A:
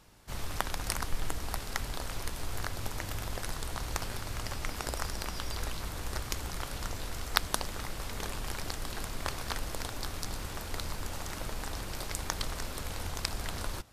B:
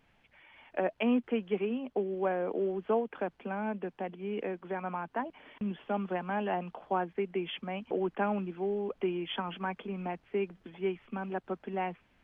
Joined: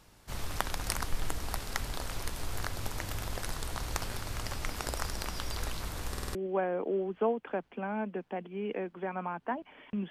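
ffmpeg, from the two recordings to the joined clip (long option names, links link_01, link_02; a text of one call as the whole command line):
ffmpeg -i cue0.wav -i cue1.wav -filter_complex "[0:a]apad=whole_dur=10.1,atrim=end=10.1,asplit=5[link_01][link_02][link_03][link_04][link_05];[link_01]atrim=end=6.152[link_06];[link_02]atrim=start=6.098:end=6.152[link_07];[link_03]atrim=start=6.098:end=6.152[link_08];[link_04]atrim=start=6.098:end=6.152[link_09];[link_05]atrim=start=6.098:end=6.152[link_10];[1:a]atrim=start=2.028:end=5.78[link_11];[link_06][link_07]acrossfade=duration=0.004:curve1=hsin:curve2=hsin[link_12];[link_12][link_08]acrossfade=duration=0.004:curve1=hsin:curve2=hsin[link_13];[link_13][link_09]acrossfade=duration=0.004:curve1=hsin:curve2=hsin[link_14];[link_14][link_10]acrossfade=duration=0.004:curve1=hsin:curve2=hsin[link_15];[link_15][link_11]acrossfade=duration=0.004:curve1=hsin:curve2=hsin" out.wav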